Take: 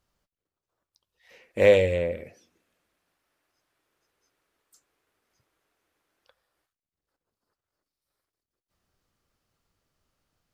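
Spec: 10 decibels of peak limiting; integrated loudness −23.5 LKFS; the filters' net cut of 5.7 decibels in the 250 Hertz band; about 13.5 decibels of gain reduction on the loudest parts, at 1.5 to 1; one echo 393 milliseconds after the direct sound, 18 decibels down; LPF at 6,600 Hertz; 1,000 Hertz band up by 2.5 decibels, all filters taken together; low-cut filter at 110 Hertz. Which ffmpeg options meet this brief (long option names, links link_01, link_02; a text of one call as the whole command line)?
ffmpeg -i in.wav -af "highpass=110,lowpass=6600,equalizer=frequency=250:width_type=o:gain=-8.5,equalizer=frequency=1000:width_type=o:gain=4.5,acompressor=threshold=-52dB:ratio=1.5,alimiter=level_in=6.5dB:limit=-24dB:level=0:latency=1,volume=-6.5dB,aecho=1:1:393:0.126,volume=18.5dB" out.wav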